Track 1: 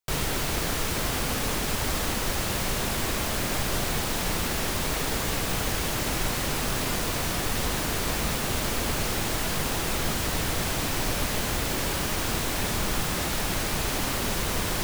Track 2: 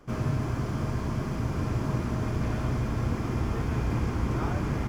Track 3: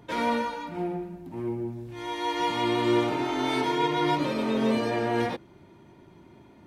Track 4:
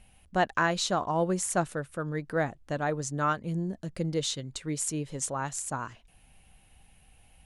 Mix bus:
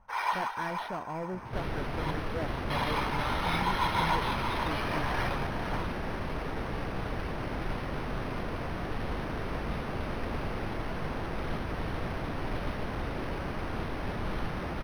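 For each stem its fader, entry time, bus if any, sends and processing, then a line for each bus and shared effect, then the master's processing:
-4.5 dB, 1.45 s, no send, no echo send, peaking EQ 4 kHz -7.5 dB 1.6 oct; word length cut 6-bit, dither triangular
-17.0 dB, 1.25 s, no send, no echo send, none
+1.0 dB, 0.00 s, muted 2.11–2.70 s, no send, echo send -7.5 dB, high-pass 910 Hz 24 dB/octave; whisper effect
-6.0 dB, 0.00 s, no send, no echo send, hard clipper -26.5 dBFS, distortion -9 dB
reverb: none
echo: feedback delay 482 ms, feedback 37%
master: level-controlled noise filter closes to 1.1 kHz, open at -21 dBFS; decimation joined by straight lines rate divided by 6×

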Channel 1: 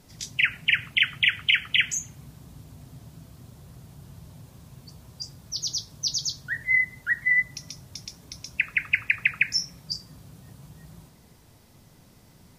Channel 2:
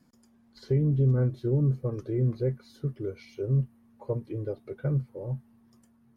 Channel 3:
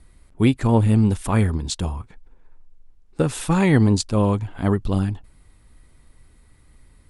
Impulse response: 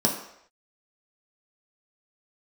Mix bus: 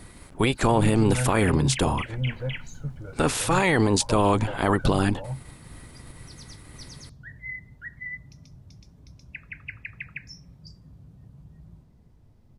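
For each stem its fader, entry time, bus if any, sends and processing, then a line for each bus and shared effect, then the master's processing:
-11.5 dB, 0.75 s, no send, tilt EQ -3.5 dB/octave
-6.5 dB, 0.00 s, no send, peaking EQ 1.1 kHz +14.5 dB 1.5 oct; comb 1.3 ms, depth 96%
+3.0 dB, 0.00 s, no send, spectral peaks clipped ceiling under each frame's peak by 16 dB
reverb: none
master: peak limiter -10.5 dBFS, peak gain reduction 11 dB

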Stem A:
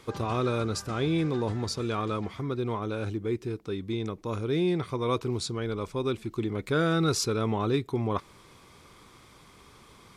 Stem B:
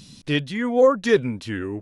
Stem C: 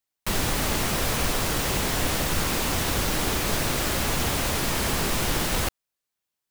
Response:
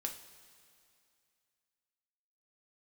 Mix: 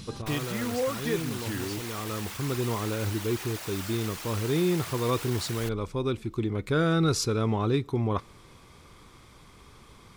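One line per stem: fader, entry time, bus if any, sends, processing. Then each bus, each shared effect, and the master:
-1.0 dB, 0.00 s, send -19 dB, auto duck -11 dB, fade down 0.25 s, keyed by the second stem
0.0 dB, 0.00 s, no send, compression 2:1, threshold -38 dBFS, peak gain reduction 14.5 dB
-8.5 dB, 0.00 s, no send, saturation -23 dBFS, distortion -13 dB; high-pass 820 Hz; whisper effect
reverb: on, pre-delay 3 ms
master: bass shelf 100 Hz +9 dB

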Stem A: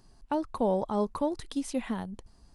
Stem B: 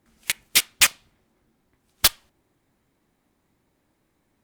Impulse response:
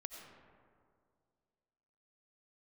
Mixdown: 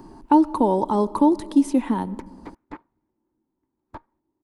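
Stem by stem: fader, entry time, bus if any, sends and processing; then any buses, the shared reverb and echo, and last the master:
+1.0 dB, 0.00 s, send -9.5 dB, three bands compressed up and down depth 40%
-15.5 dB, 1.90 s, no send, median filter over 15 samples; low-pass that closes with the level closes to 1.7 kHz, closed at -28 dBFS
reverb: on, RT60 2.2 s, pre-delay 50 ms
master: treble shelf 10 kHz +9.5 dB; small resonant body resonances 310/910 Hz, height 14 dB, ringing for 30 ms; tape noise reduction on one side only decoder only

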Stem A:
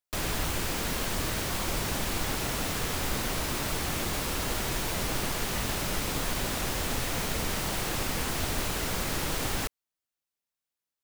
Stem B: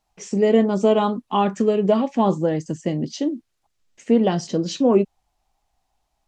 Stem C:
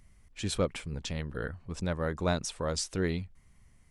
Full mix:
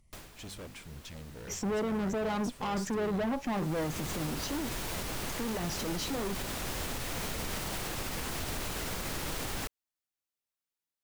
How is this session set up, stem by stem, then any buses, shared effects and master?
-4.0 dB, 0.00 s, no send, auto duck -20 dB, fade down 0.30 s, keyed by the third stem
+2.5 dB, 1.30 s, no send, spectral gate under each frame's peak -30 dB strong; peak limiter -17.5 dBFS, peak gain reduction 11.5 dB; valve stage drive 31 dB, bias 0.55
-3.0 dB, 0.00 s, no send, hum notches 50/100/150/200/250 Hz; LFO notch saw down 0.87 Hz 400–1700 Hz; valve stage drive 39 dB, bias 0.45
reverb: none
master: peak limiter -26 dBFS, peak gain reduction 7.5 dB

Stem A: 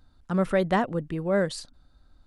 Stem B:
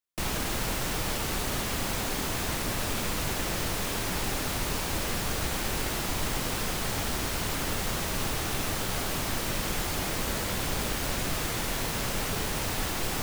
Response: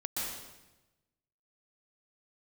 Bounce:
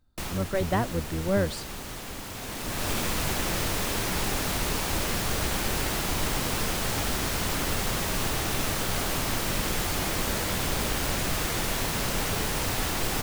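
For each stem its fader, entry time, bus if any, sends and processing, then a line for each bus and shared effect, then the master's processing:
-11.0 dB, 0.00 s, no send, no echo send, octave divider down 1 oct, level 0 dB; level rider
+2.0 dB, 0.00 s, no send, echo send -11 dB, auto duck -15 dB, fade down 0.65 s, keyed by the first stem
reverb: none
echo: delay 370 ms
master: none

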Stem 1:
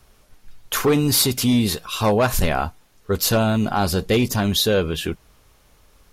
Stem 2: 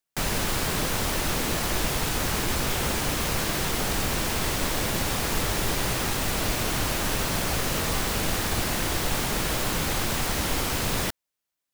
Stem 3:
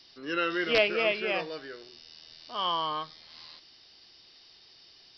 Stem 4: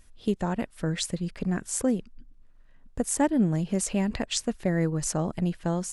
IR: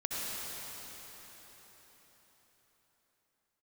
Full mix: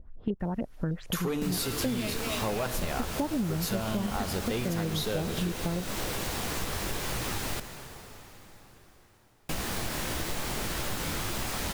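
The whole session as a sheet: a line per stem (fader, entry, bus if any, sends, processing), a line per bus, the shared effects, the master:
-6.5 dB, 0.40 s, send -12.5 dB, hum notches 50/100/150/200/250 Hz
-2.0 dB, 1.25 s, muted 7.60–9.49 s, send -14.5 dB, detune thickener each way 58 cents
-6.5 dB, 1.25 s, no send, none
-4.0 dB, 0.00 s, no send, bass shelf 330 Hz +11.5 dB; LFO low-pass saw up 6.6 Hz 480–2900 Hz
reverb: on, RT60 4.8 s, pre-delay 58 ms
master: compression 5:1, threshold -28 dBFS, peak gain reduction 12.5 dB

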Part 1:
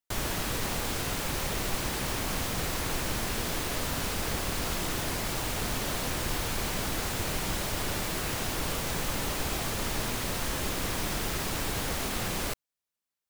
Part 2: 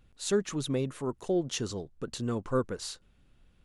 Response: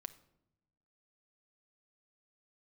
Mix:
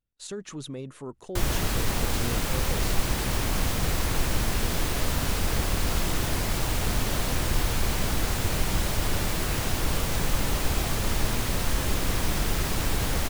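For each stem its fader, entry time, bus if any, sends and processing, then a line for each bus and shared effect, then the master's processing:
+2.0 dB, 1.25 s, no send, bass shelf 120 Hz +9 dB
-3.0 dB, 0.00 s, no send, peak limiter -25 dBFS, peak gain reduction 8.5 dB; gate -56 dBFS, range -22 dB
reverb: none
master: none

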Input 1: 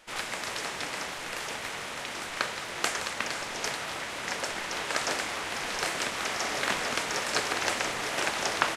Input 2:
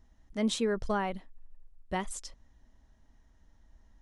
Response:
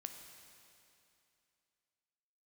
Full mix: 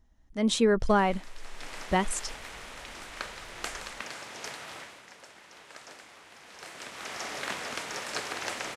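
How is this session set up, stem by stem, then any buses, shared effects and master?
1.37 s -17.5 dB -> 1.70 s -7.5 dB -> 4.80 s -7.5 dB -> 5.08 s -18.5 dB -> 6.43 s -18.5 dB -> 7.18 s -6 dB, 0.80 s, no send, high-pass 59 Hz
-3.0 dB, 0.00 s, no send, level rider gain up to 10.5 dB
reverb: none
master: none

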